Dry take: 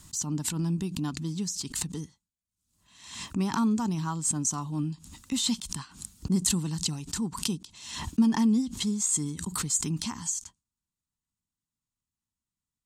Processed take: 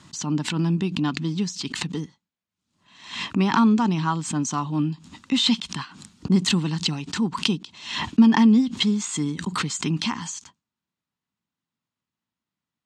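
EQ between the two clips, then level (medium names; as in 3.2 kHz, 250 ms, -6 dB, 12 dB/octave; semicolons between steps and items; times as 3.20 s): band-pass 160–3500 Hz; dynamic bell 2.7 kHz, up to +6 dB, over -52 dBFS, Q 0.83; +8.5 dB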